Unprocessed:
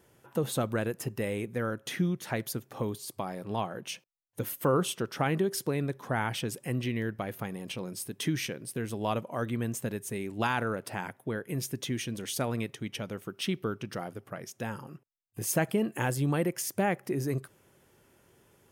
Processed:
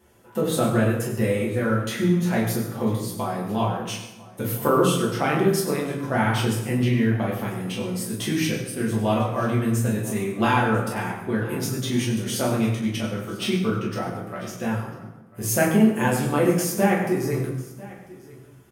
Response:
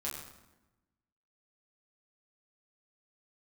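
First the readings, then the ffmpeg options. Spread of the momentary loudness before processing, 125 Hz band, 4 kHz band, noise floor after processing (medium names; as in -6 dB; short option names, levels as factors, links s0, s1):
10 LU, +9.5 dB, +6.5 dB, -46 dBFS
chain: -filter_complex "[0:a]asplit=2[s0][s1];[s1]aeval=exprs='sgn(val(0))*max(abs(val(0))-0.00668,0)':c=same,volume=0.355[s2];[s0][s2]amix=inputs=2:normalize=0,aecho=1:1:995:0.0944[s3];[1:a]atrim=start_sample=2205[s4];[s3][s4]afir=irnorm=-1:irlink=0,volume=1.58"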